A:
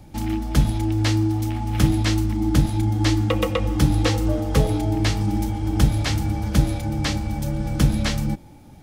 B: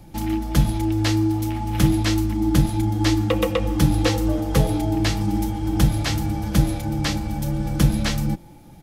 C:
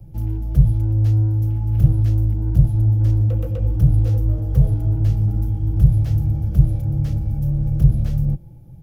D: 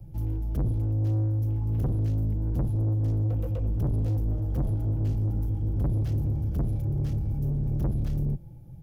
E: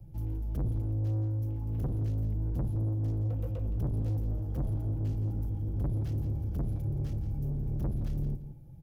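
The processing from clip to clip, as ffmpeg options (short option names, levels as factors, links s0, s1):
-af "equalizer=f=12000:t=o:w=0.21:g=7.5,aecho=1:1:5.9:0.34"
-filter_complex "[0:a]lowshelf=f=130:g=11,acrossover=split=140[s0][s1];[s1]asoftclip=type=tanh:threshold=0.075[s2];[s0][s2]amix=inputs=2:normalize=0,equalizer=f=125:t=o:w=1:g=11,equalizer=f=250:t=o:w=1:g=-8,equalizer=f=500:t=o:w=1:g=4,equalizer=f=1000:t=o:w=1:g=-10,equalizer=f=2000:t=o:w=1:g=-9,equalizer=f=4000:t=o:w=1:g=-10,equalizer=f=8000:t=o:w=1:g=-11,volume=0.531"
-af "asoftclip=type=tanh:threshold=0.112,volume=0.668"
-af "aecho=1:1:170|340:0.251|0.0452,volume=0.562"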